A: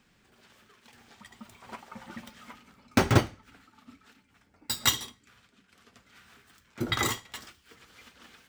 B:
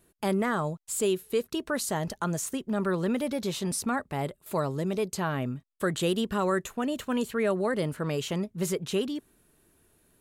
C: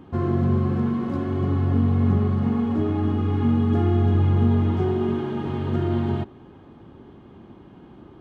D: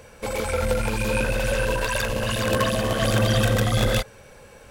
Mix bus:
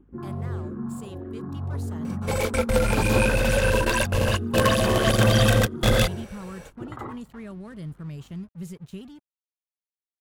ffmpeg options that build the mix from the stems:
-filter_complex "[0:a]lowpass=f=1.1k:w=0.5412,lowpass=f=1.1k:w=1.3066,crystalizer=i=7.5:c=0,aeval=exprs='val(0)+0.00251*(sin(2*PI*50*n/s)+sin(2*PI*2*50*n/s)/2+sin(2*PI*3*50*n/s)/3+sin(2*PI*4*50*n/s)/4+sin(2*PI*5*50*n/s)/5)':c=same,volume=-5.5dB[a];[1:a]asubboost=boost=10:cutoff=150,aeval=exprs='sgn(val(0))*max(abs(val(0))-0.00944,0)':c=same,volume=-14dB,asplit=2[b][c];[2:a]afwtdn=0.0251,asplit=2[d][e];[e]afreqshift=-1.6[f];[d][f]amix=inputs=2:normalize=1,volume=-7.5dB[g];[3:a]adelay=2050,volume=2dB[h];[c]apad=whole_len=297952[i];[h][i]sidechaingate=range=-37dB:threshold=-48dB:ratio=16:detection=peak[j];[a][b][g][j]amix=inputs=4:normalize=0"

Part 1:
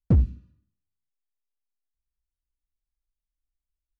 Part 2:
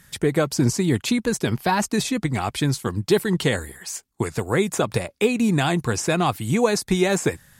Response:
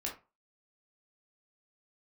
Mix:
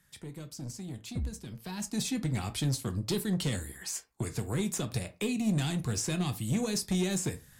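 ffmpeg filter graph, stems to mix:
-filter_complex "[0:a]adelay=1050,volume=-13dB[a];[1:a]acrossover=split=270|3000[b][c][d];[c]acompressor=threshold=-38dB:ratio=3[e];[b][e][d]amix=inputs=3:normalize=0,asoftclip=type=tanh:threshold=-19.5dB,volume=-7dB,afade=t=in:st=1.55:d=0.62:silence=0.266073,asplit=3[f][g][h];[g]volume=-5dB[i];[h]apad=whole_len=222684[j];[a][j]sidechaincompress=threshold=-44dB:ratio=8:attack=16:release=390[k];[2:a]atrim=start_sample=2205[l];[i][l]afir=irnorm=-1:irlink=0[m];[k][f][m]amix=inputs=3:normalize=0"

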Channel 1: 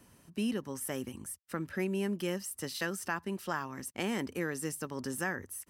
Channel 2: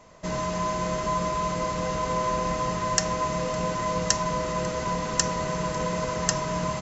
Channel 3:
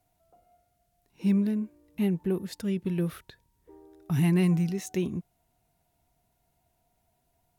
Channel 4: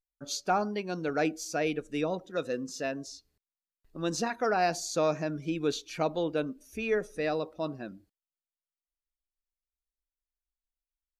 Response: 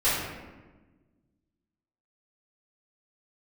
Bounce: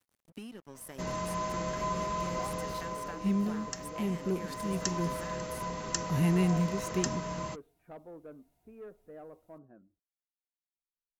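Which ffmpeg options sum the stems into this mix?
-filter_complex "[0:a]acompressor=threshold=-43dB:ratio=5,aeval=exprs='sgn(val(0))*max(abs(val(0))-0.00188,0)':c=same,volume=1dB,asplit=2[a][b];[1:a]adelay=750,volume=0.5dB,afade=t=out:st=2.39:d=0.75:silence=0.334965,afade=t=in:st=4.3:d=0.75:silence=0.446684[c];[2:a]adelay=2000,volume=-3.5dB[d];[3:a]lowpass=f=1.4k:w=0.5412,lowpass=f=1.4k:w=1.3066,asoftclip=type=tanh:threshold=-23.5dB,adelay=1900,volume=-16dB[e];[b]apad=whole_len=422544[f];[d][f]sidechaincompress=threshold=-44dB:ratio=8:attack=39:release=349[g];[a][c][g][e]amix=inputs=4:normalize=0"

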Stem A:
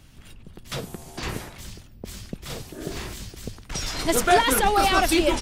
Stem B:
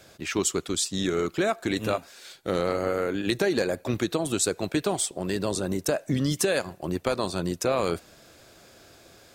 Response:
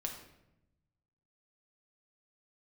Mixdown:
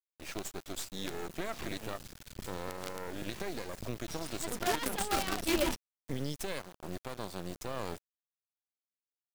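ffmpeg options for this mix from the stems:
-filter_complex "[0:a]adynamicequalizer=threshold=0.00891:dfrequency=200:dqfactor=1.6:tfrequency=200:tqfactor=1.6:attack=5:release=100:ratio=0.375:range=3.5:mode=boostabove:tftype=bell,adelay=350,volume=-4dB[a];[1:a]alimiter=limit=-15.5dB:level=0:latency=1:release=231,volume=-8dB,asplit=3[b][c][d];[b]atrim=end=5.44,asetpts=PTS-STARTPTS,afade=t=out:st=5.436:d=0.004:c=hsin[e];[c]atrim=start=5.44:end=6,asetpts=PTS-STARTPTS,volume=0[f];[d]atrim=start=6,asetpts=PTS-STARTPTS,afade=t=in:d=0.004:c=hsin[g];[e][f][g]concat=n=3:v=0:a=1,asplit=2[h][i];[i]apad=whole_len=254046[j];[a][j]sidechaincompress=threshold=-42dB:ratio=5:attack=16:release=278[k];[k][h]amix=inputs=2:normalize=0,acrusher=bits=5:dc=4:mix=0:aa=0.000001,alimiter=limit=-21dB:level=0:latency=1:release=171"

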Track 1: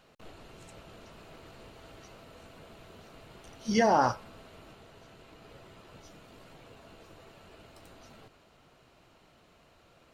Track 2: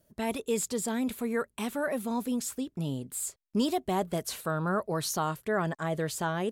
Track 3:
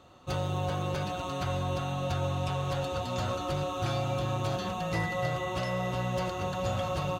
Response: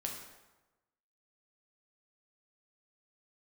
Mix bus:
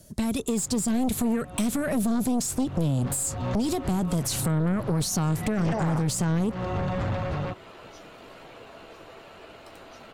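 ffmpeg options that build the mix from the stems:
-filter_complex "[0:a]bass=f=250:g=-9,treble=f=4k:g=-6,adelay=1900,volume=-0.5dB[a];[1:a]lowpass=9.4k,bass=f=250:g=7,treble=f=4k:g=12,acompressor=threshold=-27dB:ratio=6,volume=2dB,asplit=2[b][c];[2:a]lowpass=f=1.4k:p=1,aeval=exprs='0.0944*sin(PI/2*2.82*val(0)/0.0944)':c=same,adelay=350,volume=-14.5dB,afade=t=in:st=2.57:d=0.57:silence=0.375837[d];[c]apad=whole_len=332546[e];[d][e]sidechaincompress=threshold=-35dB:ratio=8:attack=32:release=329[f];[b][f]amix=inputs=2:normalize=0,dynaudnorm=f=160:g=7:m=6.5dB,alimiter=limit=-16.5dB:level=0:latency=1:release=10,volume=0dB[g];[a][g]amix=inputs=2:normalize=0,acrossover=split=260[h][i];[i]acompressor=threshold=-43dB:ratio=2[j];[h][j]amix=inputs=2:normalize=0,aeval=exprs='0.158*(cos(1*acos(clip(val(0)/0.158,-1,1)))-cos(1*PI/2))+0.0398*(cos(4*acos(clip(val(0)/0.158,-1,1)))-cos(4*PI/2))+0.0631*(cos(5*acos(clip(val(0)/0.158,-1,1)))-cos(5*PI/2))':c=same,acompressor=threshold=-24dB:ratio=2"

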